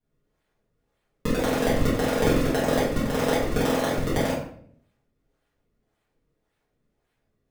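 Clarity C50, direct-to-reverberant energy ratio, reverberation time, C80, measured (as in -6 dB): 3.0 dB, -11.5 dB, 0.60 s, 6.5 dB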